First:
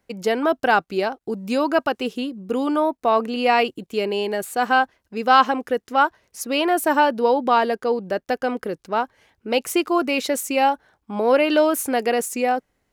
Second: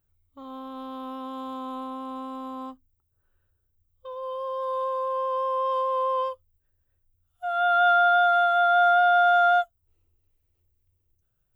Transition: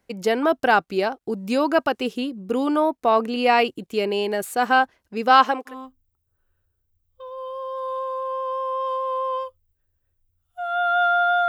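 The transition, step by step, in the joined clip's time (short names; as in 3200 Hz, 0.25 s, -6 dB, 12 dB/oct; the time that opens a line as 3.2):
first
5.29–5.75 HPF 150 Hz -> 720 Hz
5.7 switch to second from 2.55 s, crossfade 0.10 s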